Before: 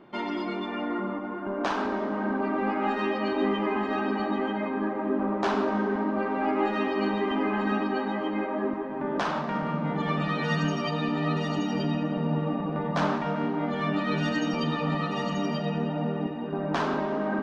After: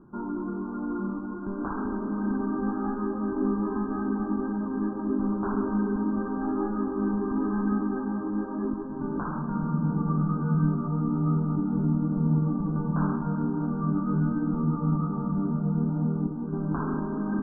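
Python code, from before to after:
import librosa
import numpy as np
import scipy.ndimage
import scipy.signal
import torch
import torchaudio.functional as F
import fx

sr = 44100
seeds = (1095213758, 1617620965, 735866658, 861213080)

y = fx.brickwall_lowpass(x, sr, high_hz=1700.0)
y = fx.tilt_eq(y, sr, slope=-3.5)
y = y + 0.69 * np.pad(y, (int(0.8 * sr / 1000.0), 0))[:len(y)]
y = F.gain(torch.from_numpy(y), -8.0).numpy()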